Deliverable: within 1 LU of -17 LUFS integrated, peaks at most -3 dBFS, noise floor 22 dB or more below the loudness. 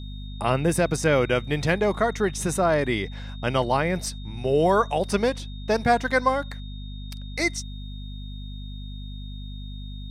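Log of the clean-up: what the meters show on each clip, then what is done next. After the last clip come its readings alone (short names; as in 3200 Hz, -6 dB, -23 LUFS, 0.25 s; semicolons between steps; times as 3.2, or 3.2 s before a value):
hum 50 Hz; harmonics up to 250 Hz; hum level -33 dBFS; steady tone 3700 Hz; tone level -46 dBFS; loudness -24.0 LUFS; peak -8.5 dBFS; loudness target -17.0 LUFS
-> notches 50/100/150/200/250 Hz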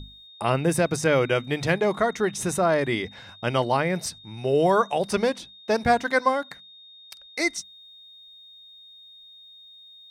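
hum none; steady tone 3700 Hz; tone level -46 dBFS
-> notch 3700 Hz, Q 30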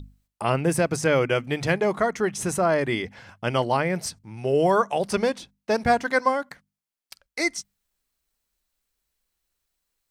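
steady tone none; loudness -24.0 LUFS; peak -7.5 dBFS; loudness target -17.0 LUFS
-> gain +7 dB; limiter -3 dBFS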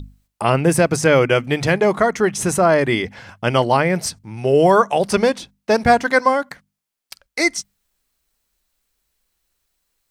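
loudness -17.5 LUFS; peak -3.0 dBFS; noise floor -80 dBFS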